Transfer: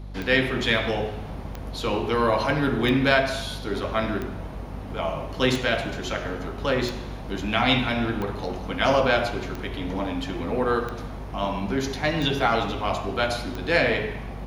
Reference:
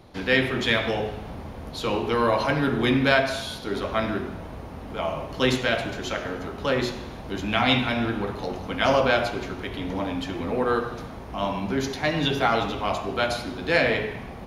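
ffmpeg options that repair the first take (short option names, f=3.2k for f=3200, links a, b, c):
-af "adeclick=t=4,bandreject=f=49.5:t=h:w=4,bandreject=f=99:t=h:w=4,bandreject=f=148.5:t=h:w=4,bandreject=f=198:t=h:w=4,bandreject=f=247.5:t=h:w=4"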